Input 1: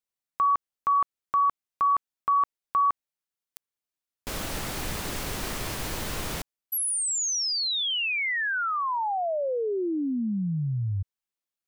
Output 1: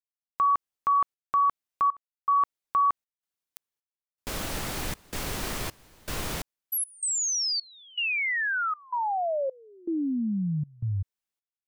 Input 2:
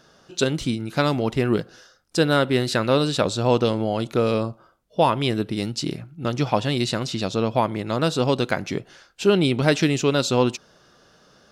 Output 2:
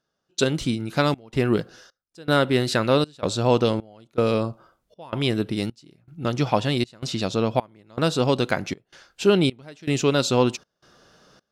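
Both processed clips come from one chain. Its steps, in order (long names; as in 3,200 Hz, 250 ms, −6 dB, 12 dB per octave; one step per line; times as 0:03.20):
gate pattern "..xxxx.xxx" 79 BPM −24 dB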